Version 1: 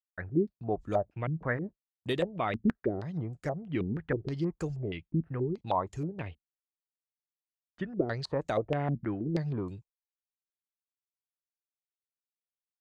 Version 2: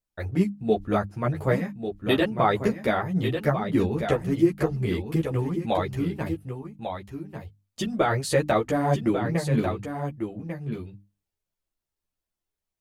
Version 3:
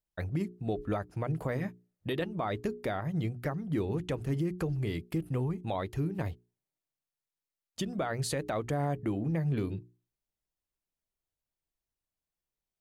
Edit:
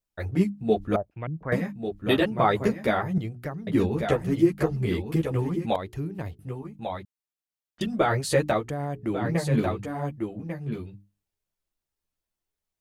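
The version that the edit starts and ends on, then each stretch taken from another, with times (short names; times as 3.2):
2
0.96–1.52 from 1
3.18–3.67 from 3
5.76–6.39 from 3
7.05–7.81 from 1
8.59–9.13 from 3, crossfade 0.24 s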